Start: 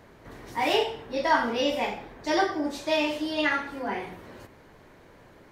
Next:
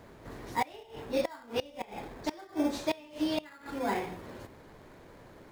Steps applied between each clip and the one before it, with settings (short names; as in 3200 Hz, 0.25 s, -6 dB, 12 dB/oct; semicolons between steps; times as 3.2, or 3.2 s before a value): flipped gate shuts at -17 dBFS, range -25 dB; in parallel at -7 dB: sample-and-hold 15×; on the sum: gain -2.5 dB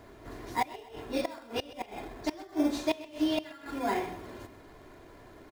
comb 2.9 ms, depth 44%; feedback echo 0.129 s, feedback 37%, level -17.5 dB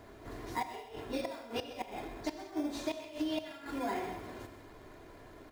compressor 10:1, threshold -30 dBFS, peak gain reduction 8.5 dB; non-linear reverb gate 0.23 s flat, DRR 8.5 dB; gain -1.5 dB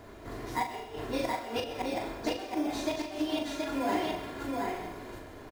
doubler 40 ms -6 dB; on a send: echo 0.725 s -3 dB; on the sum: gain +3.5 dB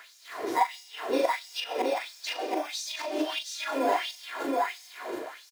in parallel at +0.5 dB: compressor, threshold -39 dBFS, peak gain reduction 13.5 dB; on the sum: LFO high-pass sine 1.5 Hz 360–5700 Hz